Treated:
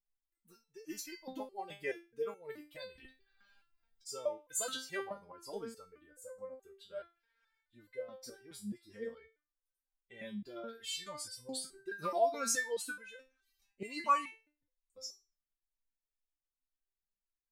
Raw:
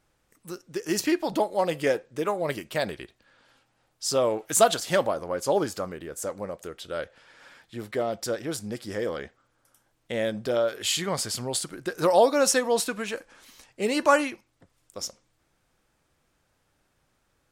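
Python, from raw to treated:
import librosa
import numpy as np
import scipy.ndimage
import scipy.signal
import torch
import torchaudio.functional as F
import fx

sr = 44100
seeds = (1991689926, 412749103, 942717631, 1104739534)

y = fx.bin_expand(x, sr, power=1.5)
y = fx.over_compress(y, sr, threshold_db=-55.0, ratio=-0.5, at=(2.94, 4.05), fade=0.02)
y = fx.resonator_held(y, sr, hz=4.7, low_hz=200.0, high_hz=510.0)
y = y * librosa.db_to_amplitude(5.0)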